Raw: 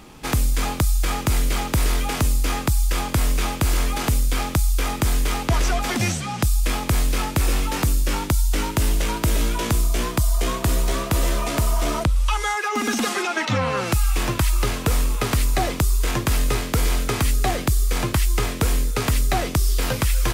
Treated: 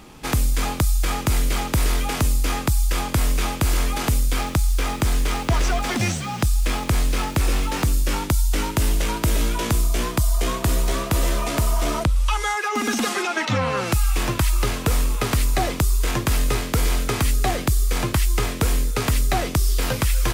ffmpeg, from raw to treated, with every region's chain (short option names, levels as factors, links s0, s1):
-filter_complex "[0:a]asettb=1/sr,asplit=3[s0][s1][s2];[s0]atrim=end=4.414[s3];[s1]atrim=start=4.41:end=7.93,asetpts=PTS-STARTPTS,afade=t=in:d=0.004:c=qsin,afade=t=out:st=3.516:d=0.004:c=qsin,highshelf=f=11000:g=-6.5,acrusher=bits=8:dc=4:mix=0:aa=0.000001[s4];[s2]atrim=start=7.926[s5];[s3][s4]acrossfade=d=0.004:c1=hsin:c2=qsin[s6];[s6][s5]acrossfade=d=0.004:c1=qsin:c2=hsin"